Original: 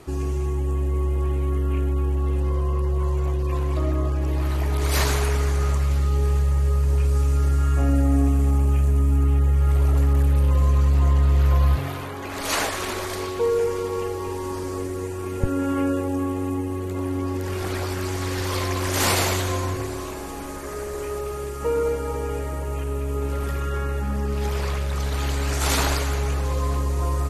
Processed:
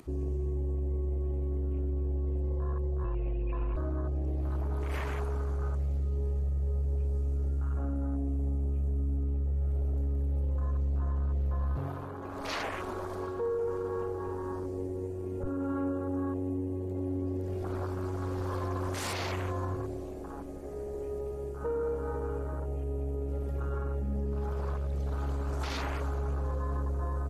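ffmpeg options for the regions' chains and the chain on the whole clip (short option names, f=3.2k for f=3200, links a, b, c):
-filter_complex "[0:a]asettb=1/sr,asplit=3[a][b][c];[a]atrim=end=3.044[d];[b]atrim=start=3.04:end=3.76,asetpts=PTS-STARTPTS,afade=t=in:d=0.004:c=qsin,afade=t=out:st=0.716:d=0.004:c=qsin,lowpass=f=2.6k:t=q:w=9.9,asubboost=boost=11.5:cutoff=60,afreqshift=-16[e];[c]atrim=start=3.756[f];[d][e]acrossfade=d=0.004:c1=hsin:c2=qsin[g];[g][f]acrossfade=d=0.004:c1=qsin:c2=hsin,afwtdn=0.0355,acompressor=mode=upward:threshold=-37dB:ratio=2.5,alimiter=limit=-19dB:level=0:latency=1:release=21,volume=-6.5dB"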